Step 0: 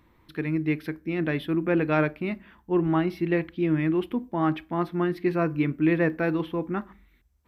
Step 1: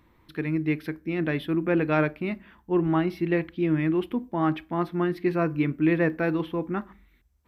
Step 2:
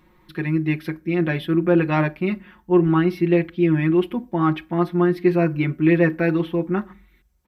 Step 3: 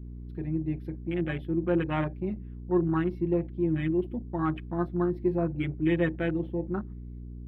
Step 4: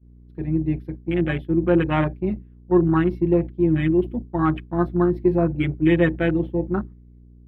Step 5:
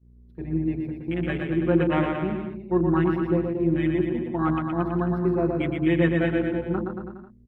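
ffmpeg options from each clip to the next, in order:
-af anull
-af "aecho=1:1:5.5:0.84,volume=2.5dB"
-af "aeval=exprs='val(0)+0.0316*(sin(2*PI*60*n/s)+sin(2*PI*2*60*n/s)/2+sin(2*PI*3*60*n/s)/3+sin(2*PI*4*60*n/s)/4+sin(2*PI*5*60*n/s)/5)':c=same,afwtdn=0.0398,volume=-9dB"
-af "agate=range=-33dB:threshold=-30dB:ratio=3:detection=peak,volume=8dB"
-filter_complex "[0:a]bandreject=f=50:t=h:w=6,bandreject=f=100:t=h:w=6,bandreject=f=150:t=h:w=6,bandreject=f=200:t=h:w=6,bandreject=f=250:t=h:w=6,bandreject=f=300:t=h:w=6,bandreject=f=350:t=h:w=6,asplit=2[a][b];[b]aecho=0:1:120|228|325.2|412.7|491.4:0.631|0.398|0.251|0.158|0.1[c];[a][c]amix=inputs=2:normalize=0,volume=-4dB"

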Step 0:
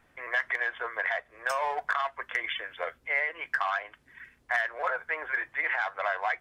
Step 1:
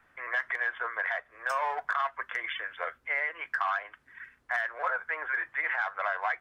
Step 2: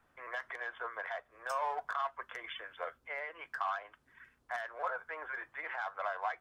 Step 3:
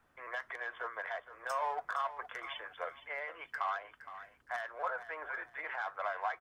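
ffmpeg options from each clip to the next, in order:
-filter_complex "[0:a]equalizer=f=1.4k:t=o:w=1.3:g=10,acrossover=split=220|1000|2800[a][b][c][d];[c]alimiter=limit=-19.5dB:level=0:latency=1:release=113[e];[a][b][e][d]amix=inputs=4:normalize=0,volume=-5.5dB"
-af "equalizer=f=1.9k:w=1.4:g=-10,volume=-2.5dB"
-af "aecho=1:1:466|932|1398:0.211|0.0592|0.0166"

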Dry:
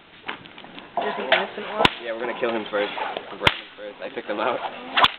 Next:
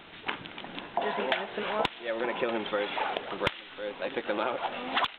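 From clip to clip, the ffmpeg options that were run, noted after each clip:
-af "acompressor=threshold=-26dB:ratio=6"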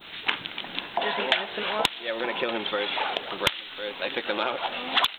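-af "crystalizer=i=7.5:c=0,adynamicequalizer=threshold=0.0158:dfrequency=2200:dqfactor=0.8:tfrequency=2200:tqfactor=0.8:attack=5:release=100:ratio=0.375:range=2:mode=cutabove:tftype=bell"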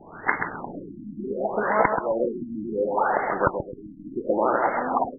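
-filter_complex "[0:a]asplit=2[a][b];[b]aecho=0:1:131|262|393|524|655:0.531|0.223|0.0936|0.0393|0.0165[c];[a][c]amix=inputs=2:normalize=0,afftfilt=real='re*lt(b*sr/1024,310*pow(2200/310,0.5+0.5*sin(2*PI*0.69*pts/sr)))':imag='im*lt(b*sr/1024,310*pow(2200/310,0.5+0.5*sin(2*PI*0.69*pts/sr)))':win_size=1024:overlap=0.75,volume=7dB"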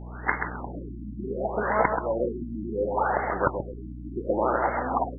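-af "aeval=exprs='val(0)+0.0178*(sin(2*PI*60*n/s)+sin(2*PI*2*60*n/s)/2+sin(2*PI*3*60*n/s)/3+sin(2*PI*4*60*n/s)/4+sin(2*PI*5*60*n/s)/5)':c=same,volume=-2.5dB"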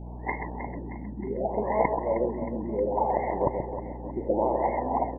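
-af "asuperstop=centerf=1400:order=8:qfactor=1.4,aecho=1:1:313|626|939|1252|1565|1878:0.282|0.152|0.0822|0.0444|0.024|0.0129"

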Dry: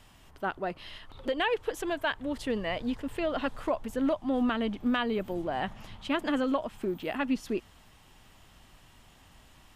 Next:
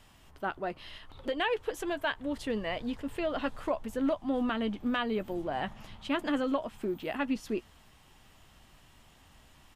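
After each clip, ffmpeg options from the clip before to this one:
-filter_complex "[0:a]asplit=2[a][b];[b]adelay=14,volume=-13dB[c];[a][c]amix=inputs=2:normalize=0,volume=-2dB"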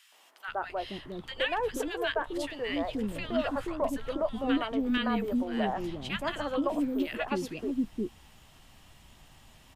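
-filter_complex "[0:a]acrossover=split=400|1400[a][b][c];[b]adelay=120[d];[a]adelay=480[e];[e][d][c]amix=inputs=3:normalize=0,volume=3.5dB"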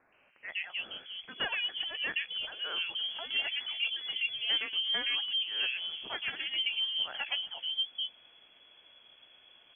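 -af "lowpass=f=2.9k:t=q:w=0.5098,lowpass=f=2.9k:t=q:w=0.6013,lowpass=f=2.9k:t=q:w=0.9,lowpass=f=2.9k:t=q:w=2.563,afreqshift=-3400,volume=-3.5dB"

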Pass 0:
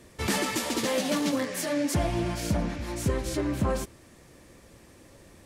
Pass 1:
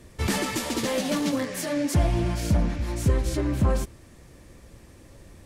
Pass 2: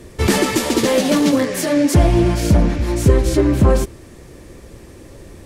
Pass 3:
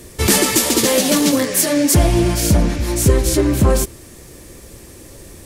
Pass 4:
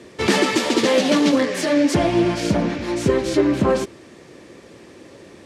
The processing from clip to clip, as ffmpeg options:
-af "lowshelf=f=110:g=11.5"
-af "equalizer=f=390:w=1.9:g=6.5,volume=8.5dB"
-af "crystalizer=i=2.5:c=0,volume=-1dB"
-af "highpass=190,lowpass=3.6k"

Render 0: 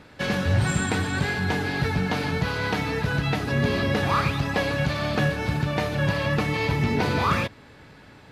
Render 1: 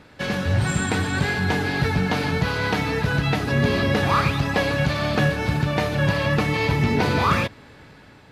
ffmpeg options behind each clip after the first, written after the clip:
-af "dynaudnorm=f=340:g=5:m=3dB"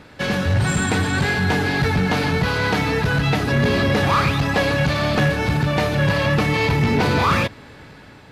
-af "asoftclip=type=tanh:threshold=-15.5dB,volume=4.5dB"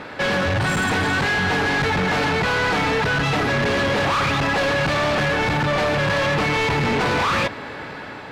-filter_complex "[0:a]asplit=2[a][b];[b]highpass=f=720:p=1,volume=19dB,asoftclip=type=tanh:threshold=-11dB[c];[a][c]amix=inputs=2:normalize=0,lowpass=f=1.5k:p=1,volume=-6dB,aeval=exprs='0.282*sin(PI/2*1.78*val(0)/0.282)':c=same,volume=-6.5dB"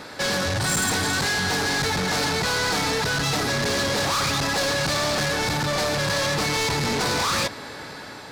-af "aexciter=amount=4.9:drive=5.1:freq=4k,volume=-4.5dB"

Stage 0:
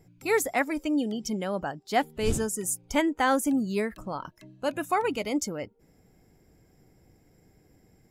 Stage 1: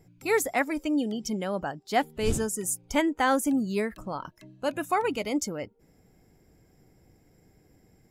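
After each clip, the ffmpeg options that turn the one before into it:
-af anull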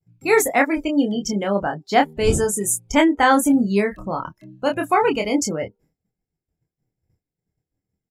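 -filter_complex "[0:a]afftdn=nr=15:nf=-43,agate=range=-33dB:threshold=-59dB:ratio=3:detection=peak,asplit=2[a][b];[b]adelay=25,volume=-4.5dB[c];[a][c]amix=inputs=2:normalize=0,volume=7.5dB"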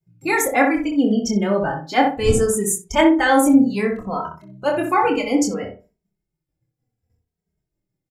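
-filter_complex "[0:a]asplit=2[a][b];[b]adelay=62,lowpass=f=1.4k:p=1,volume=-3.5dB,asplit=2[c][d];[d]adelay=62,lowpass=f=1.4k:p=1,volume=0.3,asplit=2[e][f];[f]adelay=62,lowpass=f=1.4k:p=1,volume=0.3,asplit=2[g][h];[h]adelay=62,lowpass=f=1.4k:p=1,volume=0.3[i];[c][e][g][i]amix=inputs=4:normalize=0[j];[a][j]amix=inputs=2:normalize=0,asplit=2[k][l];[l]adelay=2.8,afreqshift=-0.65[m];[k][m]amix=inputs=2:normalize=1,volume=2.5dB"

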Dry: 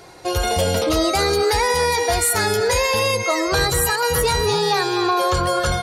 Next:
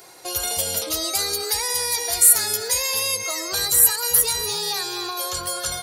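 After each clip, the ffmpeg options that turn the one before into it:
-filter_complex "[0:a]aemphasis=mode=production:type=bsi,acrossover=split=120|3000[a][b][c];[b]acompressor=threshold=-31dB:ratio=2[d];[a][d][c]amix=inputs=3:normalize=0,volume=-4.5dB"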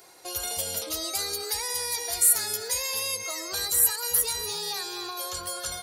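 -af "equalizer=f=130:t=o:w=0.21:g=-8,volume=-6.5dB"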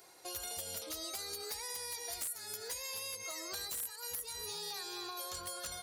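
-af "acompressor=threshold=-32dB:ratio=6,aeval=exprs='(mod(15.8*val(0)+1,2)-1)/15.8':c=same,volume=-6.5dB"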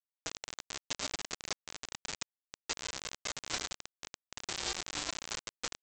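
-af "afreqshift=-59,aresample=16000,acrusher=bits=5:mix=0:aa=0.000001,aresample=44100,volume=8.5dB"

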